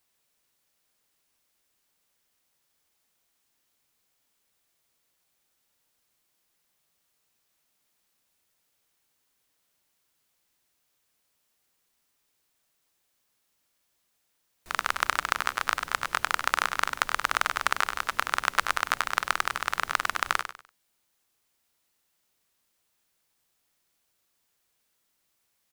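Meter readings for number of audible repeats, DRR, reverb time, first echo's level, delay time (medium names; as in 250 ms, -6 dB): 3, no reverb, no reverb, -10.0 dB, 99 ms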